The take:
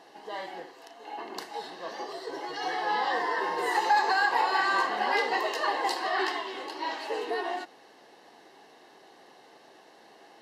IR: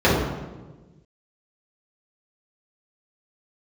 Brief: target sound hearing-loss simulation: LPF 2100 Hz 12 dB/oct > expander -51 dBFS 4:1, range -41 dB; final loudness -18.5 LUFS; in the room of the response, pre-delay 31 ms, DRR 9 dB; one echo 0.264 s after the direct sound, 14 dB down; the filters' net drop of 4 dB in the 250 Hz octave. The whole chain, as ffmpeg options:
-filter_complex "[0:a]equalizer=f=250:t=o:g=-7,aecho=1:1:264:0.2,asplit=2[a][b];[1:a]atrim=start_sample=2205,adelay=31[c];[b][c]afir=irnorm=-1:irlink=0,volume=-33dB[d];[a][d]amix=inputs=2:normalize=0,lowpass=2.1k,agate=range=-41dB:threshold=-51dB:ratio=4,volume=11dB"

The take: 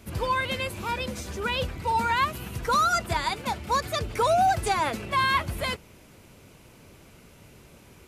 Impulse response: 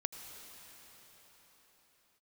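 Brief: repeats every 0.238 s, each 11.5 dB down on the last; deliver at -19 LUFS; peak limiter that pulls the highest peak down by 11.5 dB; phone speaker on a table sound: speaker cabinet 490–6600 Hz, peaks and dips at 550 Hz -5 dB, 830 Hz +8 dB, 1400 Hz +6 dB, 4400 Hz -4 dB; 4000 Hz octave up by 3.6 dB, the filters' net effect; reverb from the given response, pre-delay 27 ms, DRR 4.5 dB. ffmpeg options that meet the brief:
-filter_complex "[0:a]equalizer=f=4k:t=o:g=6,alimiter=limit=-23.5dB:level=0:latency=1,aecho=1:1:238|476|714:0.266|0.0718|0.0194,asplit=2[a][b];[1:a]atrim=start_sample=2205,adelay=27[c];[b][c]afir=irnorm=-1:irlink=0,volume=-5dB[d];[a][d]amix=inputs=2:normalize=0,highpass=f=490:w=0.5412,highpass=f=490:w=1.3066,equalizer=f=550:t=q:w=4:g=-5,equalizer=f=830:t=q:w=4:g=8,equalizer=f=1.4k:t=q:w=4:g=6,equalizer=f=4.4k:t=q:w=4:g=-4,lowpass=f=6.6k:w=0.5412,lowpass=f=6.6k:w=1.3066,volume=10dB"

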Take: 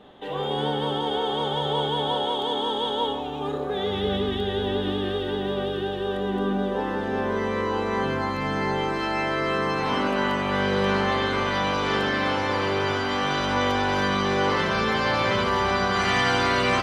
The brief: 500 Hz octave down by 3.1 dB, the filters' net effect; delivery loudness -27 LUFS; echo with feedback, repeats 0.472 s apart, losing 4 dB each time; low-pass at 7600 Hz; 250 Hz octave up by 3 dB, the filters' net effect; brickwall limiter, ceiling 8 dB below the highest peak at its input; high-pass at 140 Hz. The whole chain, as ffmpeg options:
-af "highpass=140,lowpass=7.6k,equalizer=f=250:t=o:g=6,equalizer=f=500:t=o:g=-6,alimiter=limit=-18dB:level=0:latency=1,aecho=1:1:472|944|1416|1888|2360|2832|3304|3776|4248:0.631|0.398|0.25|0.158|0.0994|0.0626|0.0394|0.0249|0.0157,volume=-2dB"

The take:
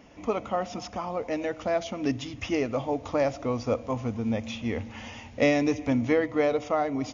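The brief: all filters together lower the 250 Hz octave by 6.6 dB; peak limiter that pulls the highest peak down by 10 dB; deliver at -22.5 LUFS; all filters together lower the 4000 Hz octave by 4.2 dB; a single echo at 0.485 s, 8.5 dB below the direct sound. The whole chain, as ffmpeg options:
-af "equalizer=f=250:t=o:g=-8,equalizer=f=4k:t=o:g=-6,alimiter=limit=-23.5dB:level=0:latency=1,aecho=1:1:485:0.376,volume=11.5dB"

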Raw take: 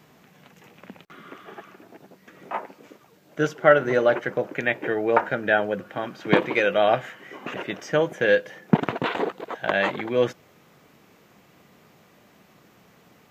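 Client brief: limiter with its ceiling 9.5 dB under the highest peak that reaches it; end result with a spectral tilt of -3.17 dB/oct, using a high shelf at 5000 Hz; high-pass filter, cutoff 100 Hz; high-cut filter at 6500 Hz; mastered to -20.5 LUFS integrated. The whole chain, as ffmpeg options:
-af "highpass=100,lowpass=6.5k,highshelf=f=5k:g=7,volume=5.5dB,alimiter=limit=-6.5dB:level=0:latency=1"

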